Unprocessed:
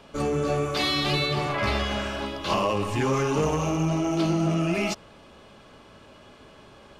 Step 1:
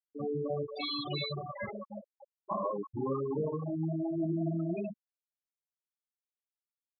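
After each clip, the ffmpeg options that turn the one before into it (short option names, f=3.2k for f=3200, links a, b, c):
-af "highpass=130,afftfilt=real='re*gte(hypot(re,im),0.2)':imag='im*gte(hypot(re,im),0.2)':win_size=1024:overlap=0.75,volume=-7dB"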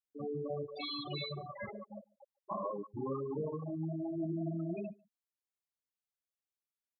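-filter_complex "[0:a]asplit=2[a][b];[b]adelay=145.8,volume=-27dB,highshelf=f=4k:g=-3.28[c];[a][c]amix=inputs=2:normalize=0,volume=-4.5dB"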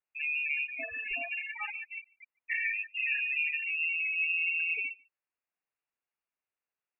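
-af "lowpass=f=2.5k:t=q:w=0.5098,lowpass=f=2.5k:t=q:w=0.6013,lowpass=f=2.5k:t=q:w=0.9,lowpass=f=2.5k:t=q:w=2.563,afreqshift=-2900,volume=6dB"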